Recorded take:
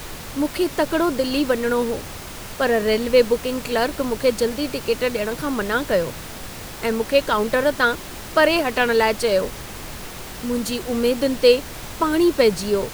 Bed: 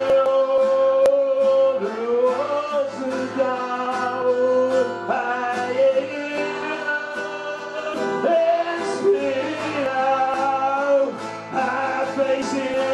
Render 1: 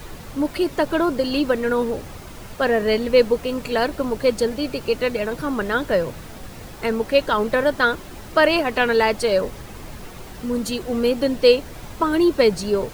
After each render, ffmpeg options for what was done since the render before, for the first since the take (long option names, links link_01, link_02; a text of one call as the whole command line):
ffmpeg -i in.wav -af "afftdn=noise_reduction=8:noise_floor=-35" out.wav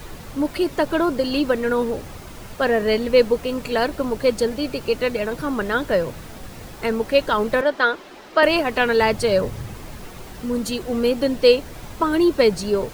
ffmpeg -i in.wav -filter_complex "[0:a]asettb=1/sr,asplit=3[link_01][link_02][link_03];[link_01]atrim=end=7.614[link_04];[link_02]atrim=start=7.61:end=8.43,asetpts=PTS-STARTPTS,afade=type=in:duration=0.004:curve=qsin,afade=type=out:start_time=0.816:duration=0.004:curve=qsin,acrossover=split=250 5500:gain=0.0794 1 0.224[link_05][link_06][link_07];[link_05][link_06][link_07]amix=inputs=3:normalize=0[link_08];[link_03]atrim=start=8.426[link_09];[link_04][link_08]acrossfade=duration=0.004:curve1=hsin:curve2=qsin[link_10];[link_10][link_09]acrossfade=duration=0.004:curve1=qsin:curve2=hsin,asettb=1/sr,asplit=3[link_11][link_12][link_13];[link_11]atrim=end=9.014[link_14];[link_12]atrim=start=9.01:end=9.74,asetpts=PTS-STARTPTS,afade=type=in:duration=0.004:curve=qsin,afade=type=out:start_time=0.726:duration=0.004:curve=qsin,equalizer=frequency=110:width_type=o:width=1.1:gain=11.5[link_15];[link_13]atrim=start=9.736[link_16];[link_14][link_15]acrossfade=duration=0.004:curve1=hsin:curve2=qsin[link_17];[link_17][link_16]acrossfade=duration=0.004:curve1=qsin:curve2=hsin" out.wav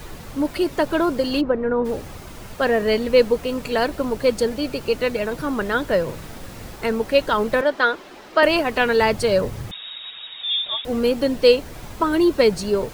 ffmpeg -i in.wav -filter_complex "[0:a]asplit=3[link_01][link_02][link_03];[link_01]afade=type=out:start_time=1.4:duration=0.02[link_04];[link_02]lowpass=1200,afade=type=in:start_time=1.4:duration=0.02,afade=type=out:start_time=1.84:duration=0.02[link_05];[link_03]afade=type=in:start_time=1.84:duration=0.02[link_06];[link_04][link_05][link_06]amix=inputs=3:normalize=0,asettb=1/sr,asplit=3[link_07][link_08][link_09];[link_07]atrim=end=6.044[link_10];[link_08]atrim=start=6.04:end=6.76,asetpts=PTS-STARTPTS,afade=type=in:duration=0.004:curve=qsin,afade=type=out:start_time=0.716:duration=0.004:curve=qsin,asplit=2[link_11][link_12];[link_12]adelay=47,volume=-6dB[link_13];[link_11][link_13]amix=inputs=2:normalize=0,atrim=end_sample=31752[link_14];[link_09]atrim=start=6.756[link_15];[link_10][link_14]acrossfade=duration=0.004:curve1=hsin:curve2=qsin[link_16];[link_16][link_15]acrossfade=duration=0.004:curve1=qsin:curve2=hsin,asettb=1/sr,asplit=3[link_17][link_18][link_19];[link_17]atrim=end=9.714[link_20];[link_18]atrim=start=9.71:end=10.85,asetpts=PTS-STARTPTS,afade=type=in:duration=0.004:curve=qsin,afade=type=out:start_time=1.136:duration=0.004:curve=qsin,lowpass=frequency=3200:width_type=q:width=0.5098,lowpass=frequency=3200:width_type=q:width=0.6013,lowpass=frequency=3200:width_type=q:width=0.9,lowpass=frequency=3200:width_type=q:width=2.563,afreqshift=-3800[link_21];[link_19]atrim=start=10.846[link_22];[link_20][link_21]acrossfade=duration=0.004:curve1=hsin:curve2=qsin[link_23];[link_23][link_22]acrossfade=duration=0.004:curve1=qsin:curve2=hsin" out.wav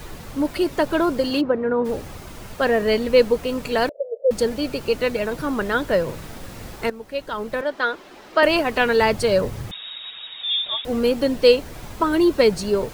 ffmpeg -i in.wav -filter_complex "[0:a]asettb=1/sr,asplit=3[link_01][link_02][link_03];[link_01]atrim=end=1.304[link_04];[link_02]atrim=start=1.3:end=1.89,asetpts=PTS-STARTPTS,afade=type=in:duration=0.004:curve=qsin,afade=type=out:start_time=0.586:duration=0.004:curve=qsin,highpass=100[link_05];[link_03]atrim=start=1.886[link_06];[link_04][link_05]acrossfade=duration=0.004:curve1=hsin:curve2=qsin[link_07];[link_07][link_06]acrossfade=duration=0.004:curve1=qsin:curve2=hsin,asettb=1/sr,asplit=3[link_08][link_09][link_10];[link_08]atrim=end=3.894[link_11];[link_09]atrim=start=3.89:end=4.31,asetpts=PTS-STARTPTS,afade=type=in:duration=0.004:curve=qsin,afade=type=out:start_time=0.416:duration=0.004:curve=qsin,asuperpass=centerf=540:order=8:qfactor=2.9[link_12];[link_10]atrim=start=4.306[link_13];[link_11][link_12]acrossfade=duration=0.004:curve1=hsin:curve2=qsin[link_14];[link_14][link_13]acrossfade=duration=0.004:curve1=qsin:curve2=hsin,asplit=2[link_15][link_16];[link_15]atrim=end=6.9,asetpts=PTS-STARTPTS,afade=type=out:start_time=6.896:duration=0.004:curve=hsin:silence=0.158489[link_17];[link_16]atrim=start=6.9,asetpts=PTS-STARTPTS,afade=type=in:duration=1.65:silence=0.158489[link_18];[link_17][link_18]concat=n=2:v=0:a=1" out.wav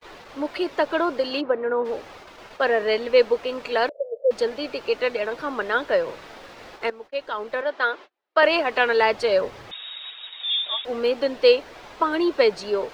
ffmpeg -i in.wav -filter_complex "[0:a]agate=range=-39dB:threshold=-37dB:ratio=16:detection=peak,acrossover=split=350 5200:gain=0.112 1 0.1[link_01][link_02][link_03];[link_01][link_02][link_03]amix=inputs=3:normalize=0" out.wav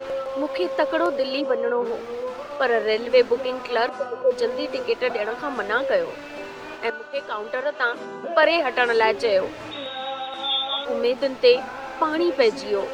ffmpeg -i in.wav -i bed.wav -filter_complex "[1:a]volume=-11.5dB[link_01];[0:a][link_01]amix=inputs=2:normalize=0" out.wav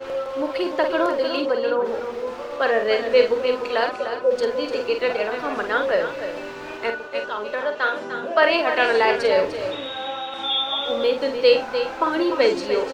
ffmpeg -i in.wav -filter_complex "[0:a]asplit=2[link_01][link_02];[link_02]adelay=48,volume=-7dB[link_03];[link_01][link_03]amix=inputs=2:normalize=0,aecho=1:1:299:0.355" out.wav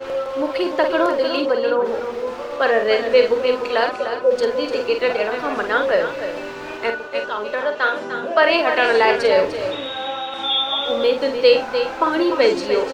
ffmpeg -i in.wav -af "volume=3dB,alimiter=limit=-3dB:level=0:latency=1" out.wav